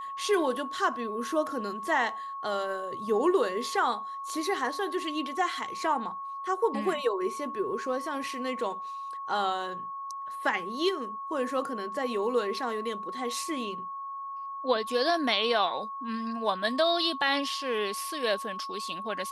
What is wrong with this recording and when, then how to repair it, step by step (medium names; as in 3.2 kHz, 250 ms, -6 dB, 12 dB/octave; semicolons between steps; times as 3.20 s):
whine 1.1 kHz -35 dBFS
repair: band-stop 1.1 kHz, Q 30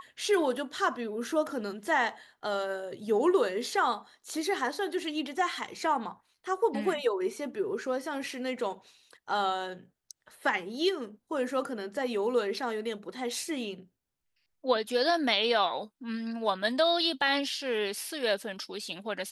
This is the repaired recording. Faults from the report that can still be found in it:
nothing left